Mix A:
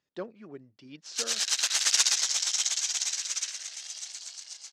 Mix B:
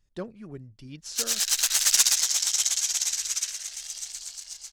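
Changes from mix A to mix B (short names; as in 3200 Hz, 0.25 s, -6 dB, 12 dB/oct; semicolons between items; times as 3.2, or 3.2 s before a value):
speech: remove air absorption 50 m; master: remove BPF 280–6100 Hz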